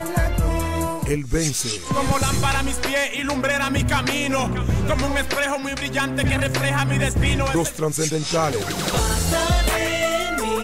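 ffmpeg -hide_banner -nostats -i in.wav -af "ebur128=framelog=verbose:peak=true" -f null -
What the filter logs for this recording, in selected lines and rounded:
Integrated loudness:
  I:         -21.4 LUFS
  Threshold: -31.4 LUFS
Loudness range:
  LRA:         1.0 LU
  Threshold: -41.3 LUFS
  LRA low:   -21.8 LUFS
  LRA high:  -20.8 LUFS
True peak:
  Peak:      -10.0 dBFS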